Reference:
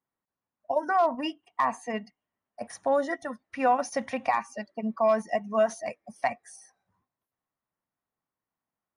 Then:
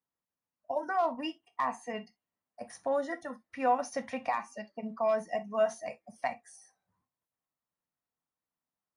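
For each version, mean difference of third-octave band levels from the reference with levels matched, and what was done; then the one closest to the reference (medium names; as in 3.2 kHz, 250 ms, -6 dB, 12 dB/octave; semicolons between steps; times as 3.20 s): 1.5 dB: gated-style reverb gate 90 ms falling, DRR 8.5 dB; trim -6 dB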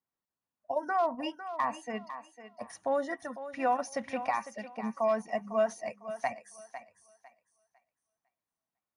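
2.5 dB: thinning echo 502 ms, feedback 26%, high-pass 350 Hz, level -11 dB; trim -5 dB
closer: first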